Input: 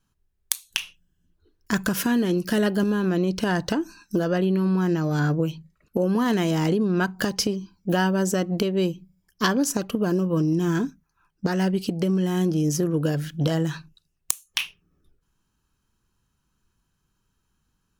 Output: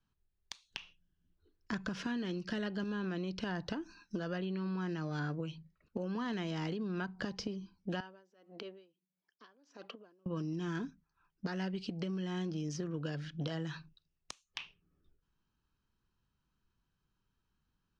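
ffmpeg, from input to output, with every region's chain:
ffmpeg -i in.wav -filter_complex "[0:a]asettb=1/sr,asplit=3[link_01][link_02][link_03];[link_01]atrim=end=8.004[link_04];[link_02]atrim=start=8:end=10.26,asetpts=PTS-STARTPTS,afade=type=in:duration=0.004:curve=qsin,afade=type=out:start_time=2.256:duration=0.004:curve=qsin,acompressor=threshold=-27dB:ratio=5:attack=3.2:release=140:knee=1:detection=peak,highpass=410,lowpass=5100,aeval=exprs='val(0)*pow(10,-25*(0.5-0.5*cos(2*PI*1.6*n/s))/20)':channel_layout=same[link_05];[link_03]atrim=start=10.256[link_06];[link_04][link_05]acrossfade=duration=0.004:curve1=hsin:curve2=qsin[link_07];[link_07][link_06]acrossfade=duration=0.004:curve1=qsin:curve2=hsin,lowpass=frequency=5200:width=0.5412,lowpass=frequency=5200:width=1.3066,acrossover=split=170|1100[link_08][link_09][link_10];[link_08]acompressor=threshold=-35dB:ratio=4[link_11];[link_09]acompressor=threshold=-31dB:ratio=4[link_12];[link_10]acompressor=threshold=-34dB:ratio=4[link_13];[link_11][link_12][link_13]amix=inputs=3:normalize=0,volume=-8.5dB" out.wav

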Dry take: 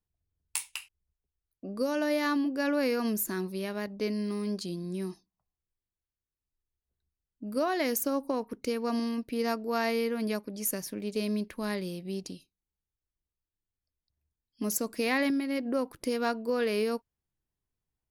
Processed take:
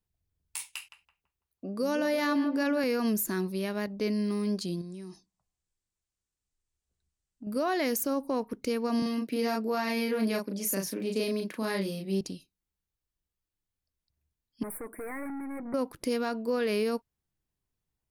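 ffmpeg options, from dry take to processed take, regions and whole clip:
ffmpeg -i in.wav -filter_complex "[0:a]asettb=1/sr,asplit=3[link_01][link_02][link_03];[link_01]atrim=end=0.654[link_04];[link_02]atrim=start=0.65:end=2.84,asetpts=PTS-STARTPTS,afade=type=in:duration=0.004:curve=qsin,afade=type=out:start_time=2.186:duration=0.004:curve=qsin,highpass=frequency=96:poles=1,asplit=2[link_05][link_06];[link_06]adelay=166,lowpass=frequency=1000:poles=1,volume=-8dB,asplit=2[link_07][link_08];[link_08]adelay=166,lowpass=frequency=1000:poles=1,volume=0.48,asplit=2[link_09][link_10];[link_10]adelay=166,lowpass=frequency=1000:poles=1,volume=0.48,asplit=2[link_11][link_12];[link_12]adelay=166,lowpass=frequency=1000:poles=1,volume=0.48,asplit=2[link_13][link_14];[link_14]adelay=166,lowpass=frequency=1000:poles=1,volume=0.48,asplit=2[link_15][link_16];[link_16]adelay=166,lowpass=frequency=1000:poles=1,volume=0.48[link_17];[link_05][link_07][link_09][link_11][link_13][link_15][link_17]amix=inputs=7:normalize=0,atrim=end_sample=96579[link_18];[link_03]atrim=start=2.836[link_19];[link_04][link_18]acrossfade=duration=0.004:curve1=hsin:curve2=qsin[link_20];[link_20][link_19]acrossfade=duration=0.004:curve1=qsin:curve2=hsin,asettb=1/sr,asplit=3[link_21][link_22][link_23];[link_21]atrim=end=4.814[link_24];[link_22]atrim=start=4.81:end=7.47,asetpts=PTS-STARTPTS,afade=type=in:duration=0.004:curve=qsin,afade=type=out:start_time=2.656:duration=0.004:curve=qsin,acompressor=threshold=-41dB:ratio=12:attack=3.2:release=140:knee=1:detection=peak,lowpass=frequency=7900:width_type=q:width=2.5[link_25];[link_23]atrim=start=7.466[link_26];[link_24][link_25]acrossfade=duration=0.004:curve1=hsin:curve2=qsin[link_27];[link_27][link_26]acrossfade=duration=0.004:curve1=qsin:curve2=hsin,asettb=1/sr,asplit=3[link_28][link_29][link_30];[link_28]atrim=end=9.024[link_31];[link_29]atrim=start=9.02:end=12.21,asetpts=PTS-STARTPTS,afade=type=in:duration=0.004:curve=qsin,afade=type=out:start_time=3.186:duration=0.004:curve=qsin,highpass=frequency=160:width=0.5412,highpass=frequency=160:width=1.3066,asplit=2[link_32][link_33];[link_33]adelay=36,volume=-3dB[link_34];[link_32][link_34]amix=inputs=2:normalize=0,atrim=end_sample=140679[link_35];[link_30]atrim=start=12.206[link_36];[link_31][link_35]acrossfade=duration=0.004:curve1=hsin:curve2=qsin[link_37];[link_37][link_36]acrossfade=duration=0.004:curve1=qsin:curve2=hsin,asettb=1/sr,asplit=3[link_38][link_39][link_40];[link_38]atrim=end=14.634[link_41];[link_39]atrim=start=14.63:end=15.74,asetpts=PTS-STARTPTS,afade=type=in:duration=0.004:curve=qsin,afade=type=out:start_time=1.106:duration=0.004:curve=qsin,lowshelf=frequency=230:width_type=q:width=1.5:gain=-7,aeval=exprs='(tanh(79.4*val(0)+0.25)-tanh(0.25))/79.4':channel_layout=same,asuperstop=centerf=4500:order=20:qfactor=0.75[link_42];[link_40]atrim=start=15.736[link_43];[link_41][link_42]acrossfade=duration=0.004:curve1=hsin:curve2=qsin[link_44];[link_44][link_43]acrossfade=duration=0.004:curve1=qsin:curve2=hsin,equalizer=frequency=170:width=1.5:gain=2,alimiter=limit=-22dB:level=0:latency=1:release=25,volume=1.5dB" out.wav

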